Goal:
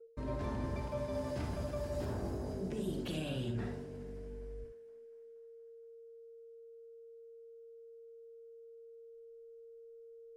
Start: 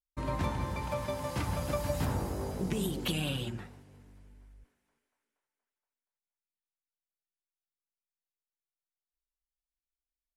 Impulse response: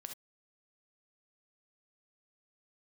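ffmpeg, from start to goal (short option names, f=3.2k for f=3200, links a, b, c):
-filter_complex "[0:a]acrossover=split=220[a][b];[a]aeval=exprs='0.0668*sin(PI/2*2*val(0)/0.0668)':c=same[c];[c][b]amix=inputs=2:normalize=0,aeval=exprs='val(0)+0.00398*sin(2*PI*460*n/s)':c=same,equalizer=f=160:t=o:w=0.33:g=-6,equalizer=f=250:t=o:w=0.33:g=6,equalizer=f=400:t=o:w=0.33:g=10,equalizer=f=630:t=o:w=0.33:g=10,equalizer=f=1.6k:t=o:w=0.33:g=4,equalizer=f=5k:t=o:w=0.33:g=4,equalizer=f=12.5k:t=o:w=0.33:g=-8,agate=range=-33dB:threshold=-41dB:ratio=3:detection=peak,areverse,acompressor=threshold=-37dB:ratio=16,areverse[d];[1:a]atrim=start_sample=2205[e];[d][e]afir=irnorm=-1:irlink=0,volume=7dB"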